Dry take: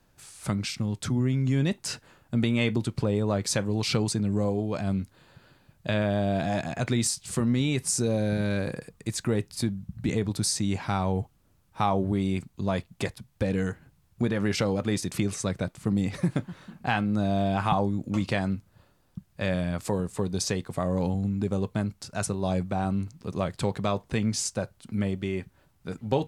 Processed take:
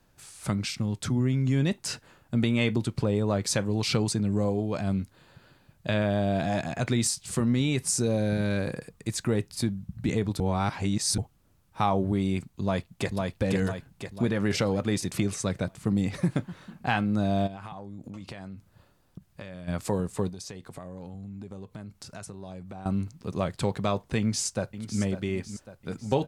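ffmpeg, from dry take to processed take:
-filter_complex "[0:a]asplit=2[a][b];[b]afade=t=in:st=12.61:d=0.01,afade=t=out:st=13.34:d=0.01,aecho=0:1:500|1000|1500|2000|2500|3000|3500:0.749894|0.374947|0.187474|0.0937368|0.0468684|0.0234342|0.0117171[c];[a][c]amix=inputs=2:normalize=0,asplit=3[d][e][f];[d]afade=t=out:st=17.46:d=0.02[g];[e]acompressor=threshold=-36dB:ratio=12:attack=3.2:release=140:knee=1:detection=peak,afade=t=in:st=17.46:d=0.02,afade=t=out:st=19.67:d=0.02[h];[f]afade=t=in:st=19.67:d=0.02[i];[g][h][i]amix=inputs=3:normalize=0,asettb=1/sr,asplit=3[j][k][l];[j]atrim=end=20.294[m];[k]atrim=start=20.29:end=22.86,asetpts=PTS-STARTPTS,afade=t=in:d=0.004:c=qsin,afade=t=out:st=2.566:d=0.004:c=qsin,acompressor=threshold=-39dB:ratio=4:attack=3.2:release=140:knee=1:detection=peak[n];[l]atrim=start=22.856[o];[m][n]acrossfade=d=0.004:c1=hsin:c2=qsin[p];[p][o]acrossfade=d=0.004:c1=qsin:c2=hsin,asplit=2[q][r];[r]afade=t=in:st=24.18:d=0.01,afade=t=out:st=25.01:d=0.01,aecho=0:1:550|1100|1650|2200|2750:0.281838|0.140919|0.0704596|0.0352298|0.0176149[s];[q][s]amix=inputs=2:normalize=0,asplit=3[t][u][v];[t]atrim=end=10.402[w];[u]atrim=start=10.398:end=11.182,asetpts=PTS-STARTPTS,areverse[x];[v]atrim=start=11.178[y];[w][x]acrossfade=d=0.004:c1=hsin:c2=hsin[z];[z][y]acrossfade=d=0.004:c1=hsin:c2=hsin"

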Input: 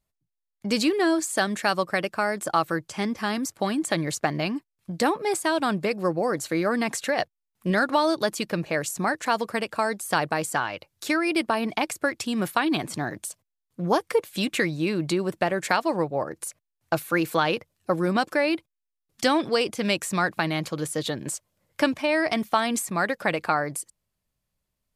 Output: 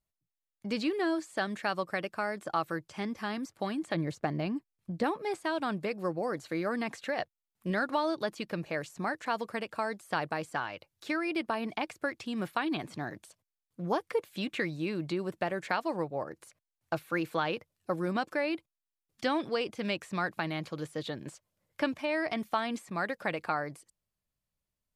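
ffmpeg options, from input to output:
-filter_complex "[0:a]asettb=1/sr,asplit=3[a][b][c];[a]atrim=end=3.944[d];[b]atrim=start=3.94:end=5.04,asetpts=PTS-STARTPTS,afade=t=in:d=0.004:c=qsin,afade=t=out:st=1.096:d=0.004:c=qsin,tiltshelf=f=810:g=4.5[e];[c]atrim=start=5.036[f];[d][e]acrossfade=d=0.004:c1=hsin:c2=qsin[g];[g][f]acrossfade=d=0.004:c1=qsin:c2=hsin,acrossover=split=4500[h][i];[i]acompressor=threshold=-48dB:ratio=4:attack=1:release=60[j];[h][j]amix=inputs=2:normalize=0,volume=-8dB"

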